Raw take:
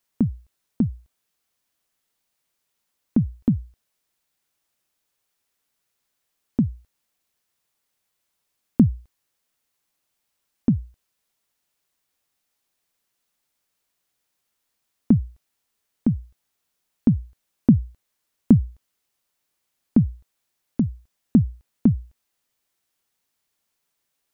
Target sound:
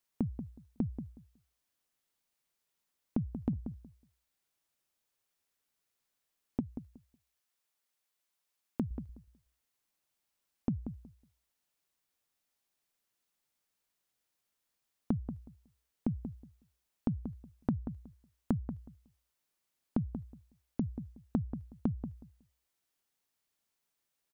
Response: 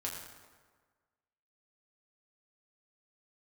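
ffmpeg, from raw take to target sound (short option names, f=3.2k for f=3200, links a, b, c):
-filter_complex "[0:a]asettb=1/sr,asplit=3[a][b][c];[a]atrim=end=6.604[d];[b]atrim=start=6.6:end=8.91,asetpts=PTS-STARTPTS,afade=t=in:d=0.004:c=qsin,afade=t=out:st=2.306:d=0.004:c=qsin,lowshelf=f=330:g=-10.5[e];[c]atrim=start=8.906[f];[d][e]acrossfade=d=0.004:c1=hsin:c2=qsin[g];[g][f]acrossfade=d=0.004:c1=qsin:c2=hsin,acompressor=threshold=-22dB:ratio=6,asplit=2[h][i];[i]adelay=184,lowpass=f=1.1k:p=1,volume=-9dB,asplit=2[j][k];[k]adelay=184,lowpass=f=1.1k:p=1,volume=0.19,asplit=2[l][m];[m]adelay=184,lowpass=f=1.1k:p=1,volume=0.19[n];[h][j][l][n]amix=inputs=4:normalize=0,volume=-7dB"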